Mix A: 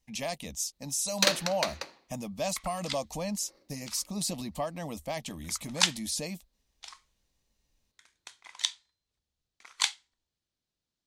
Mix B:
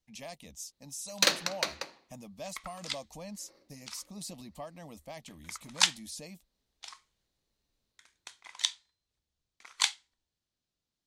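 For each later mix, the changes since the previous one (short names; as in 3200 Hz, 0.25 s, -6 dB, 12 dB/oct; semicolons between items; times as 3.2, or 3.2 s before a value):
speech -10.0 dB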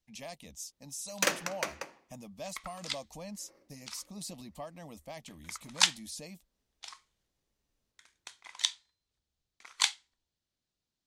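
first sound: add bell 4100 Hz -15 dB 0.47 oct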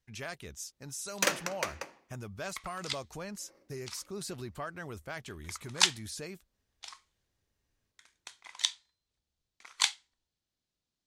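speech: remove fixed phaser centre 390 Hz, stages 6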